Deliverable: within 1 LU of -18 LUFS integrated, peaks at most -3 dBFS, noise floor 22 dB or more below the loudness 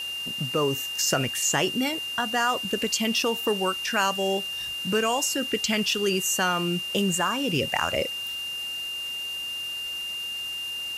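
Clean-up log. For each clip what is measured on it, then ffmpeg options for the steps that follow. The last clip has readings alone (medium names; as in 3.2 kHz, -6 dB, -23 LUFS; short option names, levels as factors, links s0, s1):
steady tone 2.8 kHz; tone level -30 dBFS; noise floor -33 dBFS; noise floor target -48 dBFS; loudness -25.5 LUFS; peak level -8.5 dBFS; loudness target -18.0 LUFS
-> -af "bandreject=f=2800:w=30"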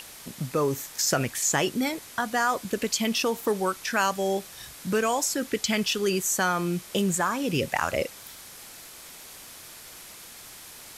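steady tone not found; noise floor -45 dBFS; noise floor target -49 dBFS
-> -af "afftdn=nr=6:nf=-45"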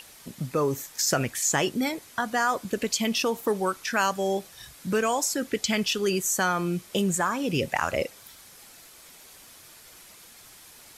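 noise floor -50 dBFS; loudness -26.5 LUFS; peak level -9.5 dBFS; loudness target -18.0 LUFS
-> -af "volume=2.66,alimiter=limit=0.708:level=0:latency=1"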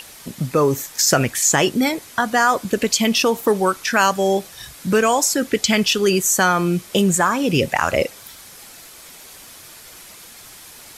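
loudness -18.0 LUFS; peak level -3.0 dBFS; noise floor -42 dBFS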